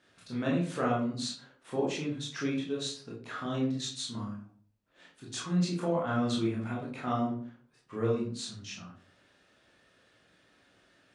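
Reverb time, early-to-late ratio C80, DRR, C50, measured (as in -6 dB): 0.45 s, 10.0 dB, -5.0 dB, 4.5 dB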